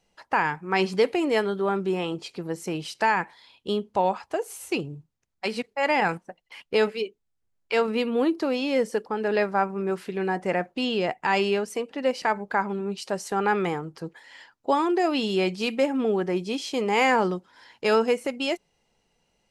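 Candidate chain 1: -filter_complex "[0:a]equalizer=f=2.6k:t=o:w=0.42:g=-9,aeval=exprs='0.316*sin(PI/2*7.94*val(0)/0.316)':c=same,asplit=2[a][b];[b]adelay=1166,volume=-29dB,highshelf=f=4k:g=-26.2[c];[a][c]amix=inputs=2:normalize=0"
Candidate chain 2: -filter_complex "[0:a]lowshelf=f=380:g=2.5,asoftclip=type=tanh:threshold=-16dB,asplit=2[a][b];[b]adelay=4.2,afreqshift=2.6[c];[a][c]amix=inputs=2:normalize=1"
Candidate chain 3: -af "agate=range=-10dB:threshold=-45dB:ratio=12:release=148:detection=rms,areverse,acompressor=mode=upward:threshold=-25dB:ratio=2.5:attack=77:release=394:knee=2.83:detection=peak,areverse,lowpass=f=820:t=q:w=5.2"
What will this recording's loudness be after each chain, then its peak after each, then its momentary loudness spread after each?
-14.5, -29.5, -19.5 LUFS; -9.5, -14.5, -2.5 dBFS; 6, 9, 13 LU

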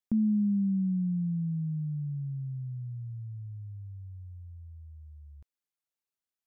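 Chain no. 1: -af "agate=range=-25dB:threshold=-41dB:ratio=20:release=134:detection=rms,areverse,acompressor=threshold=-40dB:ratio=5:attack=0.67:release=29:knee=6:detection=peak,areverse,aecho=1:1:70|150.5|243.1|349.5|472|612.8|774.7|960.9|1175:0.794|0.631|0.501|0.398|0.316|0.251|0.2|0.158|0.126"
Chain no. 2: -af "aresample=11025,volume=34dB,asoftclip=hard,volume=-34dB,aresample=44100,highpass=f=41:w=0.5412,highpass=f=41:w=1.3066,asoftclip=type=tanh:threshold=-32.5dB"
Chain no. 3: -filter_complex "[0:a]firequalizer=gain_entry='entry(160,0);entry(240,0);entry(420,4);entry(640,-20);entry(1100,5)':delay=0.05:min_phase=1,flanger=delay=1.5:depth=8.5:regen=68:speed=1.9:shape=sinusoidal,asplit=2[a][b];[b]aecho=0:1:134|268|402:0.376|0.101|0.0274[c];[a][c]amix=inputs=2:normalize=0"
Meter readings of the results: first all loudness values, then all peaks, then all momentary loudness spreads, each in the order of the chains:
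-38.0, -40.0, -35.5 LUFS; -26.5, -33.5, -21.5 dBFS; 15, 12, 22 LU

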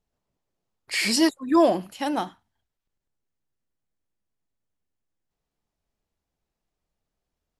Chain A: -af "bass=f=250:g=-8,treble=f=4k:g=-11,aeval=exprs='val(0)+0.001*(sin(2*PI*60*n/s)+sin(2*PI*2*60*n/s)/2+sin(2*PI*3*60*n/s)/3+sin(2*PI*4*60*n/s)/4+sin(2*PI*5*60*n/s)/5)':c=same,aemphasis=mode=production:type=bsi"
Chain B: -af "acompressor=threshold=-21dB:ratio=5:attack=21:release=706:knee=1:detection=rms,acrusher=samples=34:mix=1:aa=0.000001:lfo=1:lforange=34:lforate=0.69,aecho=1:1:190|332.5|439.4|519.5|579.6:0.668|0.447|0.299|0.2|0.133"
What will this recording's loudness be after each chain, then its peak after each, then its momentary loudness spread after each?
-25.5, -26.0 LUFS; -10.0, -13.5 dBFS; 9, 12 LU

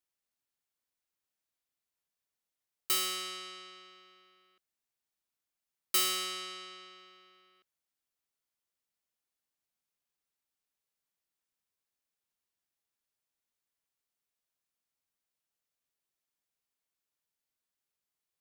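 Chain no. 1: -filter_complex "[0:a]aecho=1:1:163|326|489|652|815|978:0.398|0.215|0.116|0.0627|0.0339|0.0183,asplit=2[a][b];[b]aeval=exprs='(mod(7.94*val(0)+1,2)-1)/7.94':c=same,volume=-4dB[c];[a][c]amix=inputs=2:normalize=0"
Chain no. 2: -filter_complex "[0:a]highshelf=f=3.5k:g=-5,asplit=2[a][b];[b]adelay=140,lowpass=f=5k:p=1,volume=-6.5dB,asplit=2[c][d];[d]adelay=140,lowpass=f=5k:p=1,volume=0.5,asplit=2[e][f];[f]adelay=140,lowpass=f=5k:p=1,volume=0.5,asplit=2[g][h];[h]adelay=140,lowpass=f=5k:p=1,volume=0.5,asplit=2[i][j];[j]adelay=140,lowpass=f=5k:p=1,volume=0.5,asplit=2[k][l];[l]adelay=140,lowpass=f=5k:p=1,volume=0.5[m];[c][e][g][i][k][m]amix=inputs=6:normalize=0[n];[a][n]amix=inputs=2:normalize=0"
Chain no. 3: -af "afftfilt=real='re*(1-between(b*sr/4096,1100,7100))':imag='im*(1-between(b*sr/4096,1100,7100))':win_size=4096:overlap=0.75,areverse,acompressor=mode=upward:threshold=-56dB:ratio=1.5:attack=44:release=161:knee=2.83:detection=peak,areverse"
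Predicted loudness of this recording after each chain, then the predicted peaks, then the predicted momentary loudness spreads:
-27.5, -35.0, -34.0 LUFS; -14.0, -20.0, -17.0 dBFS; 21, 20, 20 LU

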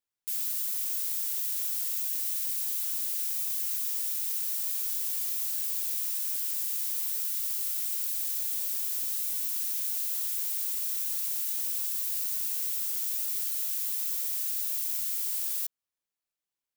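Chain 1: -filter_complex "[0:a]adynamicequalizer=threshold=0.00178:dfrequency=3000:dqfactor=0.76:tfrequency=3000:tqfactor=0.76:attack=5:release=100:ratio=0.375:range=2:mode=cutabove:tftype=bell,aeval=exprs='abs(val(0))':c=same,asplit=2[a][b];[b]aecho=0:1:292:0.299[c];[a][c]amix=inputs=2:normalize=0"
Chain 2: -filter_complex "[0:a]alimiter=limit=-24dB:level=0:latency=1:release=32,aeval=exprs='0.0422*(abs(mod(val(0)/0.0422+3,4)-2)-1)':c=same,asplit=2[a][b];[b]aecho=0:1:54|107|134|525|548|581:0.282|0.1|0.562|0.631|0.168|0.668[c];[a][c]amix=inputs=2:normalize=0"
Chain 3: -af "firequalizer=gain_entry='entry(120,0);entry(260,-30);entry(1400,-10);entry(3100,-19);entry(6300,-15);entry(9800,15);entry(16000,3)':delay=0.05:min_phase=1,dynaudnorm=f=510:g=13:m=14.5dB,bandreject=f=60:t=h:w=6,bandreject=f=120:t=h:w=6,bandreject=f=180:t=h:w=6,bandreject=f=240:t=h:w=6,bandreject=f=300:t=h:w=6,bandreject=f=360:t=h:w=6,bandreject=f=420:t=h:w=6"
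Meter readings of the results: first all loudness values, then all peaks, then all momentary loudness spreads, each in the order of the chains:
-32.5, -27.5, -12.5 LUFS; -17.5, -18.5, -1.5 dBFS; 0, 1, 9 LU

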